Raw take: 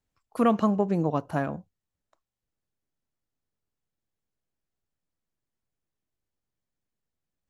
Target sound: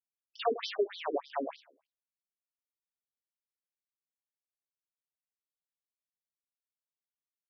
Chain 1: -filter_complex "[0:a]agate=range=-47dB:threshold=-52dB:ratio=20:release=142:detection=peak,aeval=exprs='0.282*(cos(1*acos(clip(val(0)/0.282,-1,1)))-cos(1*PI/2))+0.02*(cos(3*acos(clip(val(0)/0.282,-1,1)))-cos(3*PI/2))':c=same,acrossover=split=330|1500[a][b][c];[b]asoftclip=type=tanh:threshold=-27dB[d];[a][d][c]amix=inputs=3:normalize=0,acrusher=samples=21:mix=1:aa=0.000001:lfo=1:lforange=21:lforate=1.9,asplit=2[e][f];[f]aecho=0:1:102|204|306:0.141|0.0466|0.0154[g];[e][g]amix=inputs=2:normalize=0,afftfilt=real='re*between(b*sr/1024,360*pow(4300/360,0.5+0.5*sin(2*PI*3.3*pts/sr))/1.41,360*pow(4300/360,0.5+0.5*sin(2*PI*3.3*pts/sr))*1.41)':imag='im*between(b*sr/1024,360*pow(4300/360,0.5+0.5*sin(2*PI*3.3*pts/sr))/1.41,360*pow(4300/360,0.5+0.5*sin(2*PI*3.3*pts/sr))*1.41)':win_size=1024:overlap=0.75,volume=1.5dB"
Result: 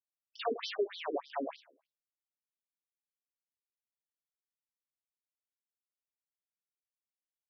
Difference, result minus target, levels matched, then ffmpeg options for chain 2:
soft clip: distortion +13 dB
-filter_complex "[0:a]agate=range=-47dB:threshold=-52dB:ratio=20:release=142:detection=peak,aeval=exprs='0.282*(cos(1*acos(clip(val(0)/0.282,-1,1)))-cos(1*PI/2))+0.02*(cos(3*acos(clip(val(0)/0.282,-1,1)))-cos(3*PI/2))':c=same,acrossover=split=330|1500[a][b][c];[b]asoftclip=type=tanh:threshold=-16dB[d];[a][d][c]amix=inputs=3:normalize=0,acrusher=samples=21:mix=1:aa=0.000001:lfo=1:lforange=21:lforate=1.9,asplit=2[e][f];[f]aecho=0:1:102|204|306:0.141|0.0466|0.0154[g];[e][g]amix=inputs=2:normalize=0,afftfilt=real='re*between(b*sr/1024,360*pow(4300/360,0.5+0.5*sin(2*PI*3.3*pts/sr))/1.41,360*pow(4300/360,0.5+0.5*sin(2*PI*3.3*pts/sr))*1.41)':imag='im*between(b*sr/1024,360*pow(4300/360,0.5+0.5*sin(2*PI*3.3*pts/sr))/1.41,360*pow(4300/360,0.5+0.5*sin(2*PI*3.3*pts/sr))*1.41)':win_size=1024:overlap=0.75,volume=1.5dB"

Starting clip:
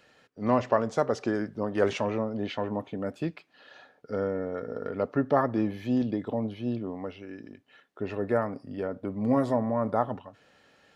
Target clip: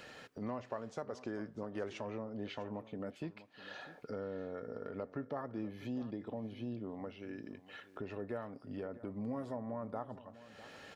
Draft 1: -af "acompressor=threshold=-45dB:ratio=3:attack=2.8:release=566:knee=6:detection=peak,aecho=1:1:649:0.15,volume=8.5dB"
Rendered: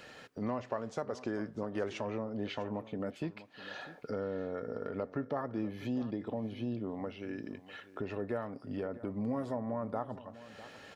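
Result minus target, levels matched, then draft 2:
compressor: peak gain reduction -5 dB
-af "acompressor=threshold=-52.5dB:ratio=3:attack=2.8:release=566:knee=6:detection=peak,aecho=1:1:649:0.15,volume=8.5dB"

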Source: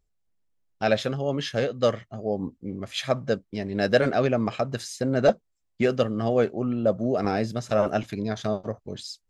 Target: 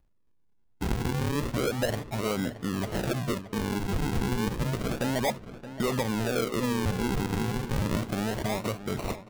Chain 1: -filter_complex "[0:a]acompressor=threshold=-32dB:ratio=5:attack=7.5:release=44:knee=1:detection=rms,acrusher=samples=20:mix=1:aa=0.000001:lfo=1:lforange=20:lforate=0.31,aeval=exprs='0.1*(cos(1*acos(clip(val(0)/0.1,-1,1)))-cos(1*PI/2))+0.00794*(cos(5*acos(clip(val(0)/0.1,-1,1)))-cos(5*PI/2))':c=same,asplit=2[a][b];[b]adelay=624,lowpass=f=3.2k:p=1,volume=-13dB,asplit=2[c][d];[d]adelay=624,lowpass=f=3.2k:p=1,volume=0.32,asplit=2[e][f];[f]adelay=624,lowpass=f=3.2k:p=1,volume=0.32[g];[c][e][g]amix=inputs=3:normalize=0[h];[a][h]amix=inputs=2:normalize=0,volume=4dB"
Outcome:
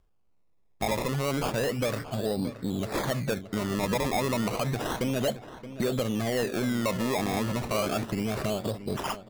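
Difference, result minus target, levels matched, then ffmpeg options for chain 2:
decimation with a swept rate: distortion -9 dB
-filter_complex "[0:a]acompressor=threshold=-32dB:ratio=5:attack=7.5:release=44:knee=1:detection=rms,acrusher=samples=50:mix=1:aa=0.000001:lfo=1:lforange=50:lforate=0.31,aeval=exprs='0.1*(cos(1*acos(clip(val(0)/0.1,-1,1)))-cos(1*PI/2))+0.00794*(cos(5*acos(clip(val(0)/0.1,-1,1)))-cos(5*PI/2))':c=same,asplit=2[a][b];[b]adelay=624,lowpass=f=3.2k:p=1,volume=-13dB,asplit=2[c][d];[d]adelay=624,lowpass=f=3.2k:p=1,volume=0.32,asplit=2[e][f];[f]adelay=624,lowpass=f=3.2k:p=1,volume=0.32[g];[c][e][g]amix=inputs=3:normalize=0[h];[a][h]amix=inputs=2:normalize=0,volume=4dB"

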